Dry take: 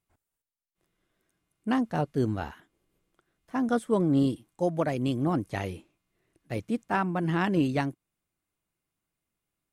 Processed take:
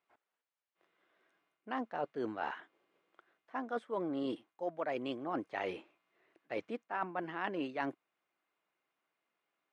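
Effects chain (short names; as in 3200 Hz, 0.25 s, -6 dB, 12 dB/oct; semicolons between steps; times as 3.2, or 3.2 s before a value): BPF 510–2600 Hz; reverse; compressor 6:1, threshold -41 dBFS, peak gain reduction 17 dB; reverse; gain +6.5 dB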